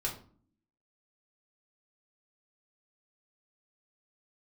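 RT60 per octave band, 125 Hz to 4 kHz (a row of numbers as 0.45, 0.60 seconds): 0.70, 0.90, 0.50, 0.45, 0.35, 0.30 seconds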